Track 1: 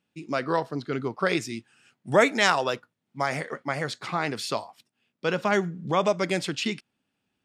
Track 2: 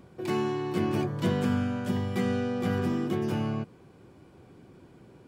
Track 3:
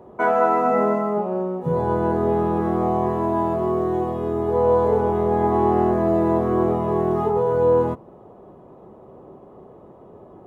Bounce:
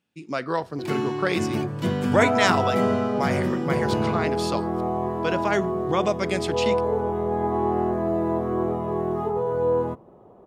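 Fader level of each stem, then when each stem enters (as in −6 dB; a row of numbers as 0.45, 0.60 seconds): −0.5, +2.0, −5.0 decibels; 0.00, 0.60, 2.00 seconds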